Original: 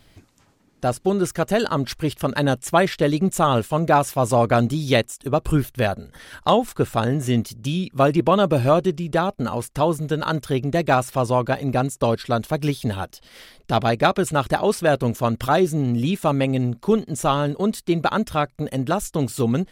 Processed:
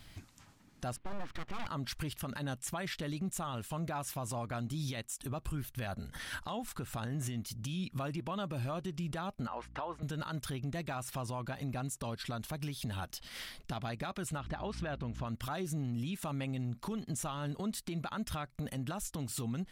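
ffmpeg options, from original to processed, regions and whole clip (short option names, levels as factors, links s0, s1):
-filter_complex "[0:a]asettb=1/sr,asplit=3[s0][s1][s2];[s0]atrim=end=0.964[s3];[s1]atrim=start=0.96:end=1.67,asetpts=PTS-STARTPTS,afade=t=in:d=0.004:c=qsin,afade=t=out:st=0.706:d=0.004:c=qsin,lowpass=f=3000:w=0.5412,lowpass=f=3000:w=1.3066,acompressor=threshold=0.0708:ratio=3:attack=3.2:release=140:knee=1:detection=peak,aeval=exprs='abs(val(0))':c=same[s4];[s2]atrim=start=1.666[s5];[s3][s4]acrossfade=d=0.004:c1=hsin:c2=qsin[s6];[s6][s5]acrossfade=d=0.004:c1=qsin:c2=hsin,asettb=1/sr,asplit=3[s7][s8][s9];[s7]atrim=end=9.474[s10];[s8]atrim=start=9.47:end=10.03,asetpts=PTS-STARTPTS,afade=t=in:d=0.004:c=qsin,afade=t=out:st=0.556:d=0.004:c=qsin,highpass=520,lowpass=2100,aeval=exprs='val(0)+0.00282*(sin(2*PI*60*n/s)+sin(2*PI*2*60*n/s)/2+sin(2*PI*3*60*n/s)/3+sin(2*PI*4*60*n/s)/4+sin(2*PI*5*60*n/s)/5)':c=same[s11];[s9]atrim=start=10.026[s12];[s10][s11]acrossfade=d=0.004:c1=hsin:c2=qsin[s13];[s13][s12]acrossfade=d=0.004:c1=qsin:c2=hsin,asettb=1/sr,asplit=3[s14][s15][s16];[s14]atrim=end=14.384[s17];[s15]atrim=start=14.38:end=15.27,asetpts=PTS-STARTPTS,afade=t=in:d=0.004:c=qsin,afade=t=out:st=0.886:d=0.004:c=qsin,lowpass=3600,aeval=exprs='val(0)+0.02*(sin(2*PI*60*n/s)+sin(2*PI*2*60*n/s)/2+sin(2*PI*3*60*n/s)/3+sin(2*PI*4*60*n/s)/4+sin(2*PI*5*60*n/s)/5)':c=same[s18];[s16]atrim=start=15.266[s19];[s17][s18]acrossfade=d=0.004:c1=hsin:c2=qsin[s20];[s20][s19]acrossfade=d=0.004:c1=qsin:c2=hsin,equalizer=f=450:t=o:w=1.2:g=-9.5,acompressor=threshold=0.0316:ratio=5,alimiter=level_in=1.78:limit=0.0631:level=0:latency=1:release=93,volume=0.562"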